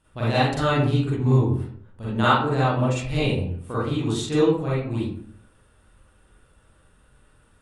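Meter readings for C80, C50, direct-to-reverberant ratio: 5.0 dB, -2.0 dB, -10.0 dB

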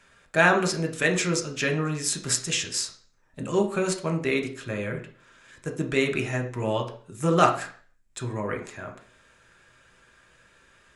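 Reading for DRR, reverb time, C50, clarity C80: 3.0 dB, 0.50 s, 11.0 dB, 15.0 dB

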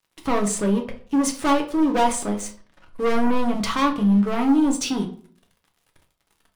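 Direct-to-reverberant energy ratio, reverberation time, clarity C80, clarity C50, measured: 2.0 dB, 0.50 s, 16.0 dB, 11.5 dB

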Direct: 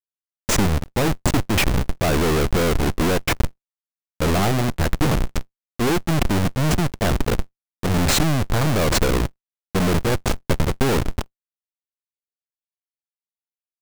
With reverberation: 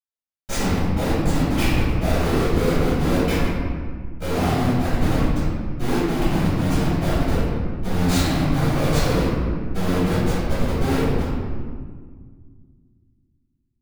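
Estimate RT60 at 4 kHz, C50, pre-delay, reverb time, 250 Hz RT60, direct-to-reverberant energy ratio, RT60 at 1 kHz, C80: 1.1 s, -3.5 dB, 3 ms, 1.8 s, 2.7 s, -15.5 dB, 1.7 s, -0.5 dB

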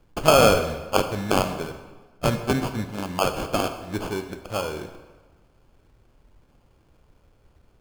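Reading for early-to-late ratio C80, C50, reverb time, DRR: 11.0 dB, 9.5 dB, 1.3 s, 7.5 dB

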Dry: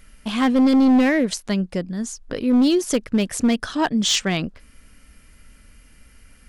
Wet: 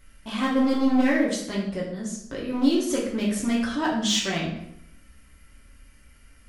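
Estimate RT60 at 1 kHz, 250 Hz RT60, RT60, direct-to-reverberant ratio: 0.75 s, 0.85 s, 0.75 s, -5.5 dB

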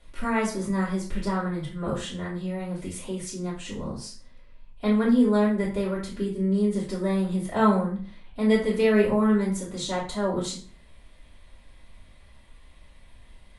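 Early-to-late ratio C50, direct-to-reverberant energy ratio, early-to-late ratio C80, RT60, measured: 6.0 dB, -9.0 dB, 11.5 dB, 0.40 s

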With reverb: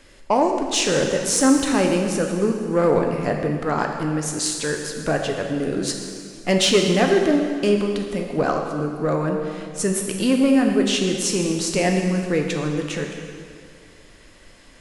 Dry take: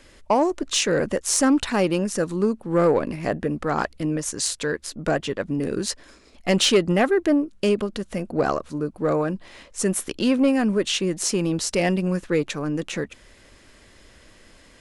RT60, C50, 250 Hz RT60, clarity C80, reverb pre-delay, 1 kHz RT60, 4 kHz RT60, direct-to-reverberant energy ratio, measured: 2.1 s, 4.0 dB, 2.1 s, 5.0 dB, 4 ms, 2.1 s, 2.0 s, 2.0 dB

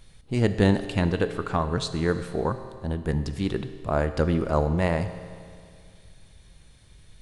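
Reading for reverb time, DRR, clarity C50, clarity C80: 2.2 s, 10.0 dB, 11.5 dB, 12.0 dB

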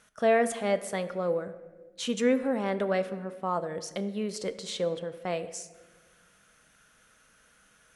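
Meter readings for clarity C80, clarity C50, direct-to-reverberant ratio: 15.0 dB, 13.5 dB, 9.5 dB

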